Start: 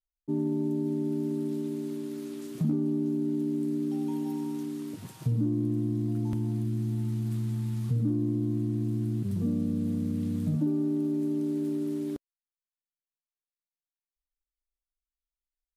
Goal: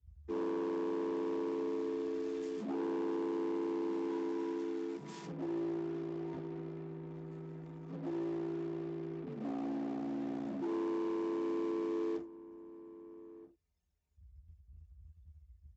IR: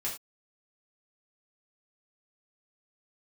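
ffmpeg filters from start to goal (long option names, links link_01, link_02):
-filter_complex "[0:a]aeval=exprs='val(0)+0.5*0.0112*sgn(val(0))':channel_layout=same[link_01];[1:a]atrim=start_sample=2205[link_02];[link_01][link_02]afir=irnorm=-1:irlink=0,anlmdn=0.631,aresample=16000,asoftclip=type=hard:threshold=-23dB,aresample=44100,asplit=2[link_03][link_04];[link_04]adelay=1283,volume=-17dB,highshelf=frequency=4000:gain=-28.9[link_05];[link_03][link_05]amix=inputs=2:normalize=0,afreqshift=43,acrossover=split=260|1500[link_06][link_07][link_08];[link_06]acompressor=threshold=-43dB:ratio=6[link_09];[link_09][link_07][link_08]amix=inputs=3:normalize=0,volume=-8.5dB"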